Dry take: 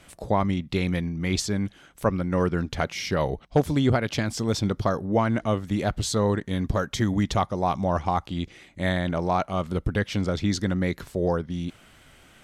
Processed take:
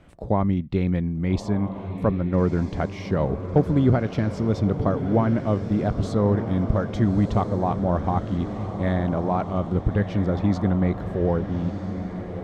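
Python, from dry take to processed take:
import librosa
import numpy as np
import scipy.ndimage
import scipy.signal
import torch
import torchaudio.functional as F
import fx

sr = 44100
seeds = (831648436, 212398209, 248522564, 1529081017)

y = fx.lowpass(x, sr, hz=1000.0, slope=6)
y = fx.low_shelf(y, sr, hz=440.0, db=4.0)
y = fx.echo_diffused(y, sr, ms=1293, feedback_pct=56, wet_db=-9)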